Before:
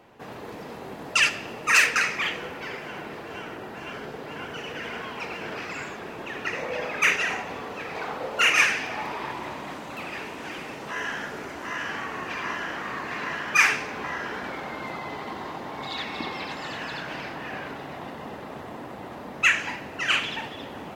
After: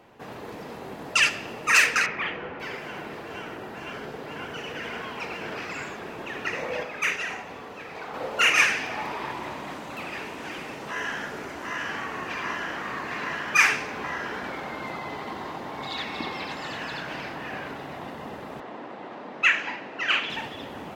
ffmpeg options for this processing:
-filter_complex "[0:a]asettb=1/sr,asplit=3[s0][s1][s2];[s0]atrim=end=2.064[s3];[s1]atrim=start=2.06:end=2.6,asetpts=PTS-STARTPTS,afade=t=in:d=0.004:c=qsin,afade=t=out:st=0.536:d=0.004:c=qsin,lowpass=2300[s4];[s2]atrim=start=2.596[s5];[s3][s4]acrossfade=d=0.004:c1=hsin:c2=qsin[s6];[s6][s5]acrossfade=d=0.004:c1=qsin:c2=hsin,asettb=1/sr,asplit=3[s7][s8][s9];[s7]atrim=end=18.604[s10];[s8]atrim=start=18.6:end=20.3,asetpts=PTS-STARTPTS,afade=t=in:d=0.004:c=qsin,afade=t=out:st=1.696:d=0.004:c=qsin,highpass=230,lowpass=4200[s11];[s9]atrim=start=20.296[s12];[s10][s11]acrossfade=d=0.004:c1=hsin:c2=qsin[s13];[s13][s12]acrossfade=d=0.004:c1=qsin:c2=hsin,asplit=3[s14][s15][s16];[s14]atrim=end=6.832[s17];[s15]atrim=start=6.828:end=8.142,asetpts=PTS-STARTPTS,volume=0.562[s18];[s16]atrim=start=8.138[s19];[s17][s18]acrossfade=d=0.004:c1=hsin:c2=hsin[s20];[s20][s19]acrossfade=d=0.004:c1=hsin:c2=hsin"

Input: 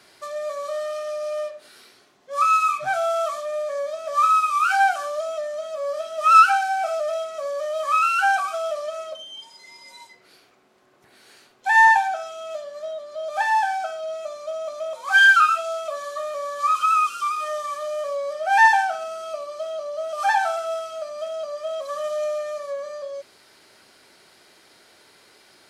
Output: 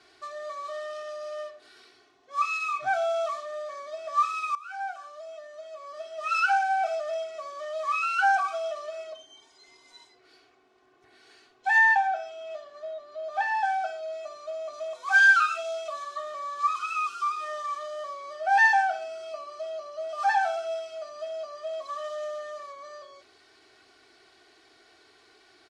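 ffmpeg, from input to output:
-filter_complex "[0:a]asettb=1/sr,asplit=3[s0][s1][s2];[s0]atrim=end=11.784[s3];[s1]atrim=start=11.78:end=13.64,asetpts=PTS-STARTPTS,afade=t=in:d=0.004:c=qsin,afade=t=out:st=1.856:d=0.004:c=qsin,aemphasis=mode=reproduction:type=cd[s4];[s2]atrim=start=13.636[s5];[s3][s4]acrossfade=d=0.004:c1=hsin:c2=qsin[s6];[s6][s5]acrossfade=d=0.004:c1=qsin:c2=hsin,asettb=1/sr,asplit=3[s7][s8][s9];[s7]atrim=end=14.734[s10];[s8]atrim=start=14.73:end=16.04,asetpts=PTS-STARTPTS,afade=t=in:d=0.004:c=qsin,afade=t=out:st=1.306:d=0.004:c=qsin,highshelf=f=4800:g=5[s11];[s9]atrim=start=16.036[s12];[s10][s11]acrossfade=d=0.004:c1=hsin:c2=qsin[s13];[s13][s12]acrossfade=d=0.004:c1=qsin:c2=hsin,asplit=2[s14][s15];[s14]atrim=end=4.55,asetpts=PTS-STARTPTS,afade=t=out:st=4.546:d=0.004:c=hsin:silence=0.0944061[s16];[s15]atrim=start=4.55,asetpts=PTS-STARTPTS,afade=t=in:d=2.23:silence=0.0944061[s17];[s16][s17]concat=n=2:v=0:a=1,lowpass=5900,aecho=1:1:2.7:0.82,volume=0.473"

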